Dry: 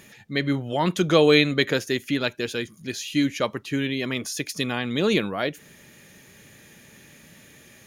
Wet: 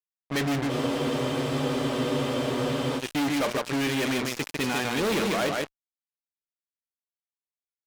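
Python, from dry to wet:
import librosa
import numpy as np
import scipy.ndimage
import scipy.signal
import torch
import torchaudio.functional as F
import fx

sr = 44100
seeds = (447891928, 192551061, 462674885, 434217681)

y = fx.high_shelf(x, sr, hz=3900.0, db=-10.0)
y = y + 10.0 ** (-6.0 / 20.0) * np.pad(y, (int(149 * sr / 1000.0), 0))[:len(y)]
y = fx.env_lowpass(y, sr, base_hz=1600.0, full_db=-20.0)
y = fx.hum_notches(y, sr, base_hz=60, count=10)
y = fx.fuzz(y, sr, gain_db=36.0, gate_db=-35.0)
y = fx.low_shelf(y, sr, hz=230.0, db=-5.5)
y = fx.spec_freeze(y, sr, seeds[0], at_s=0.72, hold_s=2.27)
y = y * 10.0 ** (-8.5 / 20.0)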